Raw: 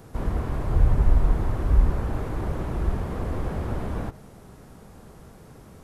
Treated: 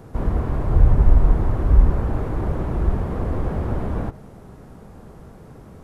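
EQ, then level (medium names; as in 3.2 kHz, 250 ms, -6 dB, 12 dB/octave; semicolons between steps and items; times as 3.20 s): treble shelf 2.1 kHz -9.5 dB; +5.0 dB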